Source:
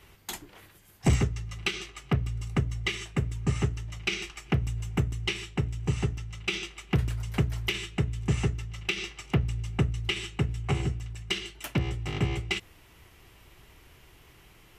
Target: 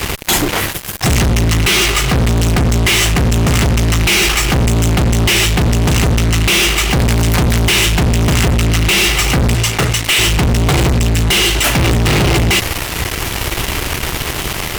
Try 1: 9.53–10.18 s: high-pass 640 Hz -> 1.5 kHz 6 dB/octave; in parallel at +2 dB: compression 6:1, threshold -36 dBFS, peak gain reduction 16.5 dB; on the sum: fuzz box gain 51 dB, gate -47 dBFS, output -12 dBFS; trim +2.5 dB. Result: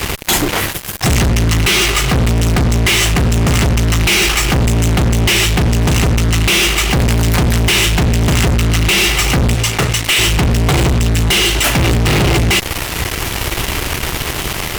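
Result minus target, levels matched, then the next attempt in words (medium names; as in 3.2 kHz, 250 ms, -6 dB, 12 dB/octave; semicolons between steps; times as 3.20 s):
compression: peak gain reduction +7.5 dB
9.53–10.18 s: high-pass 640 Hz -> 1.5 kHz 6 dB/octave; in parallel at +2 dB: compression 6:1, threshold -27 dBFS, peak gain reduction 9 dB; on the sum: fuzz box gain 51 dB, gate -47 dBFS, output -12 dBFS; trim +2.5 dB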